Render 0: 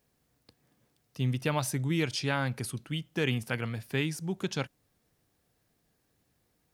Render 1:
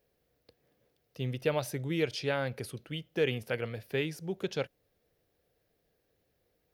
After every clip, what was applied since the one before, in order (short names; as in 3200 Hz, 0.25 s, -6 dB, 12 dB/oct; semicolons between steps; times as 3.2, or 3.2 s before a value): graphic EQ 125/250/500/1000/8000 Hz -4/-6/+9/-7/-10 dB; gain -1 dB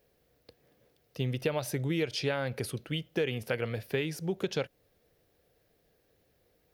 compressor 6:1, threshold -32 dBFS, peak gain reduction 9 dB; gain +5.5 dB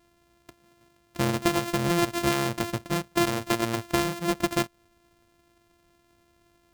sample sorter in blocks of 128 samples; gain +6 dB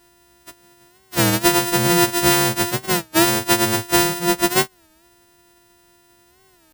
frequency quantiser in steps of 2 st; record warp 33 1/3 rpm, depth 160 cents; gain +7.5 dB